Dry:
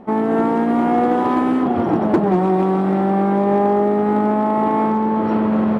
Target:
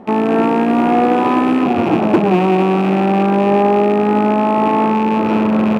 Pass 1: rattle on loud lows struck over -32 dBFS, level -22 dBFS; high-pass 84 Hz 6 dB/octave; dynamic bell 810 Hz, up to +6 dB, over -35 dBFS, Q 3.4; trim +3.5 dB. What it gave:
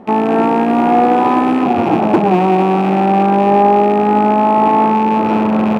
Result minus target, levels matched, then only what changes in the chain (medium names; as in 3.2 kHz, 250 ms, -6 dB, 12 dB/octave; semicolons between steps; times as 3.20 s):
1 kHz band +3.0 dB
change: dynamic bell 2.8 kHz, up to +6 dB, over -35 dBFS, Q 3.4